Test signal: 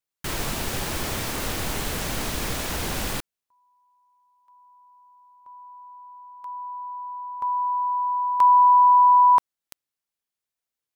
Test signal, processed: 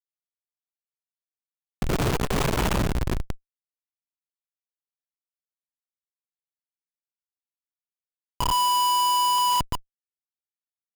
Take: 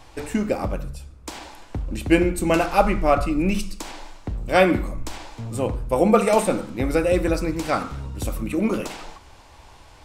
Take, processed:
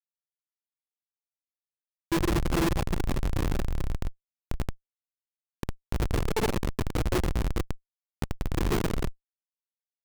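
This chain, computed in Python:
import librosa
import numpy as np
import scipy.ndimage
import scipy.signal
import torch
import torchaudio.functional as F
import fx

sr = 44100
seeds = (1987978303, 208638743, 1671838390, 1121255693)

y = fx.ripple_eq(x, sr, per_octave=0.7, db=15)
y = fx.tremolo_random(y, sr, seeds[0], hz=1.1, depth_pct=85)
y = fx.rev_plate(y, sr, seeds[1], rt60_s=2.9, hf_ratio=0.75, predelay_ms=0, drr_db=-2.0)
y = fx.rider(y, sr, range_db=4, speed_s=0.5)
y = fx.hum_notches(y, sr, base_hz=50, count=6)
y = fx.quant_dither(y, sr, seeds[2], bits=8, dither='none')
y = fx.high_shelf(y, sr, hz=3200.0, db=5.5)
y = fx.schmitt(y, sr, flips_db=-11.5)
y = fx.transformer_sat(y, sr, knee_hz=42.0)
y = y * 10.0 ** (-3.5 / 20.0)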